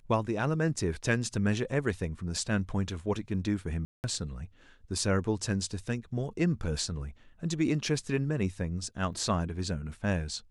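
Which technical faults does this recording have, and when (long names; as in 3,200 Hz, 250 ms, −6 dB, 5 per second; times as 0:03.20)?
0:03.85–0:04.04: drop-out 189 ms
0:09.13: drop-out 4.1 ms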